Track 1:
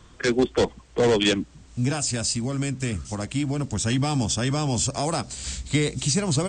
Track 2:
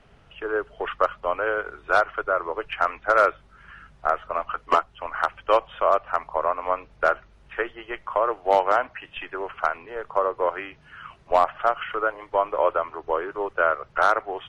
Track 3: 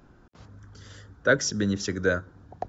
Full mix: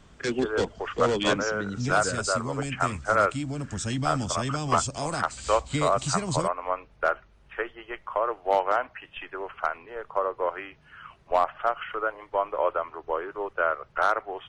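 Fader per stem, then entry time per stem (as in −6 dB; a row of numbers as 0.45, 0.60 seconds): −6.0, −4.0, −8.5 decibels; 0.00, 0.00, 0.00 seconds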